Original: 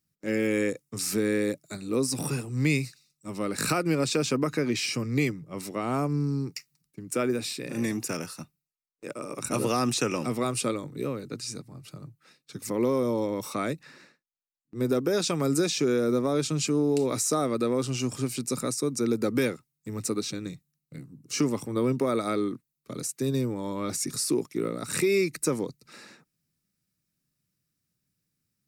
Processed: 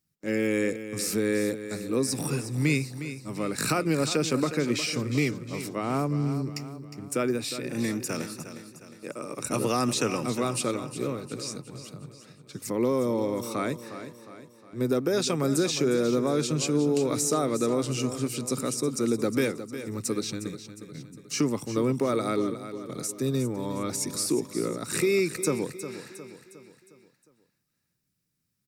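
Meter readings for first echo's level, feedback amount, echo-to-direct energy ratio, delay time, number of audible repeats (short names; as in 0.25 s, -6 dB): -11.5 dB, 48%, -10.5 dB, 0.359 s, 4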